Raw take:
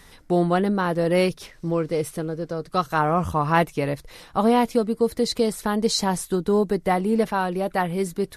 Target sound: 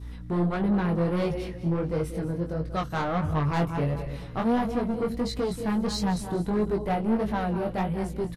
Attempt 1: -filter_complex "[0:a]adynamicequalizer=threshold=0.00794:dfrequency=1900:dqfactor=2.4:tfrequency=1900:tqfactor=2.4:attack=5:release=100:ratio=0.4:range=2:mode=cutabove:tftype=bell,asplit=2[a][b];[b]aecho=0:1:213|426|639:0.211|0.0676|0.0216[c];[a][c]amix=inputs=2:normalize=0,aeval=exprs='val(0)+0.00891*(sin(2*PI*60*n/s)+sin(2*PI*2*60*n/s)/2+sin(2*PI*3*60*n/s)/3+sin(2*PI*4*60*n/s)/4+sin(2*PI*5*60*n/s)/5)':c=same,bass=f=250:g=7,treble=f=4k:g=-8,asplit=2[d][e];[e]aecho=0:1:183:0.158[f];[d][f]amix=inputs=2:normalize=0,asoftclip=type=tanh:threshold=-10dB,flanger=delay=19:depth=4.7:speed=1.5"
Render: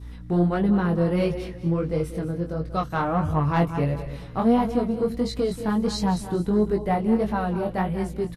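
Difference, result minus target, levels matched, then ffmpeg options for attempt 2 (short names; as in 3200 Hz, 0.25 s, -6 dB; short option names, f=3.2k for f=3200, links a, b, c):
soft clip: distortion -10 dB
-filter_complex "[0:a]adynamicequalizer=threshold=0.00794:dfrequency=1900:dqfactor=2.4:tfrequency=1900:tqfactor=2.4:attack=5:release=100:ratio=0.4:range=2:mode=cutabove:tftype=bell,asplit=2[a][b];[b]aecho=0:1:213|426|639:0.211|0.0676|0.0216[c];[a][c]amix=inputs=2:normalize=0,aeval=exprs='val(0)+0.00891*(sin(2*PI*60*n/s)+sin(2*PI*2*60*n/s)/2+sin(2*PI*3*60*n/s)/3+sin(2*PI*4*60*n/s)/4+sin(2*PI*5*60*n/s)/5)':c=same,bass=f=250:g=7,treble=f=4k:g=-8,asplit=2[d][e];[e]aecho=0:1:183:0.158[f];[d][f]amix=inputs=2:normalize=0,asoftclip=type=tanh:threshold=-19dB,flanger=delay=19:depth=4.7:speed=1.5"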